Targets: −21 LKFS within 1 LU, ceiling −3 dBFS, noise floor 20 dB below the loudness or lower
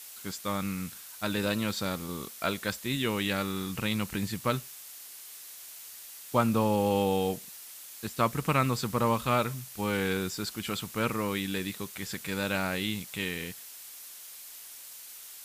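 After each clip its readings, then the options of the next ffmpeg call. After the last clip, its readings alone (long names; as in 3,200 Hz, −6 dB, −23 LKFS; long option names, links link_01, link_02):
background noise floor −47 dBFS; target noise floor −51 dBFS; integrated loudness −30.5 LKFS; sample peak −11.5 dBFS; target loudness −21.0 LKFS
→ -af "afftdn=noise_reduction=6:noise_floor=-47"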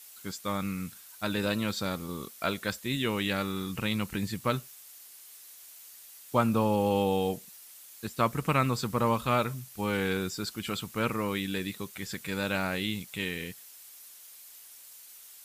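background noise floor −51 dBFS; integrated loudness −31.0 LKFS; sample peak −11.5 dBFS; target loudness −21.0 LKFS
→ -af "volume=10dB,alimiter=limit=-3dB:level=0:latency=1"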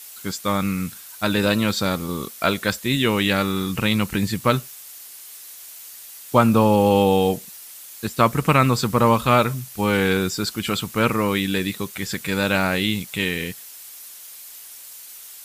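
integrated loudness −21.0 LKFS; sample peak −3.0 dBFS; background noise floor −41 dBFS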